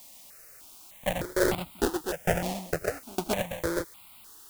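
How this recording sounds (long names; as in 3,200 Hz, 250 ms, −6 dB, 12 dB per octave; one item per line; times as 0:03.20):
aliases and images of a low sample rate 1,100 Hz, jitter 20%
tremolo saw down 2.2 Hz, depth 100%
a quantiser's noise floor 10 bits, dither triangular
notches that jump at a steady rate 3.3 Hz 400–1,700 Hz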